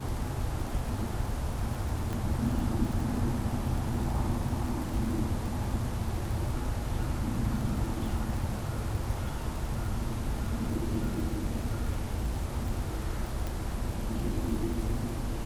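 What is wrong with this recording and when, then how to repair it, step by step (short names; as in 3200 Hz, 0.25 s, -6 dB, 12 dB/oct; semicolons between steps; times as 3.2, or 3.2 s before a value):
crackle 40/s -35 dBFS
2.13 pop
13.47 pop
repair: de-click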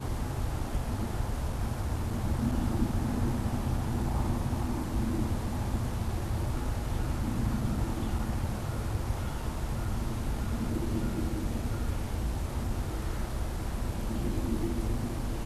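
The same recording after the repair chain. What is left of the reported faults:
2.13 pop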